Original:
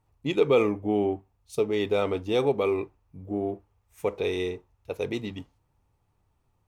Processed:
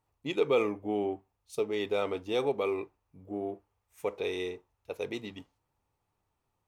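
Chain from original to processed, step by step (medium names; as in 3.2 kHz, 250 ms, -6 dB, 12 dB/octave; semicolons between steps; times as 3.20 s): bass shelf 200 Hz -10.5 dB; trim -3.5 dB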